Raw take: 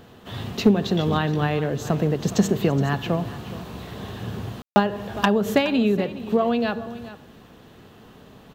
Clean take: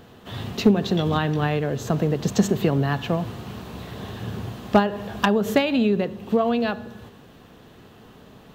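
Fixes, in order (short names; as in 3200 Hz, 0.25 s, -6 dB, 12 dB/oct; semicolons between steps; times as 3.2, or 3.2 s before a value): room tone fill 4.62–4.76; inverse comb 0.419 s -15.5 dB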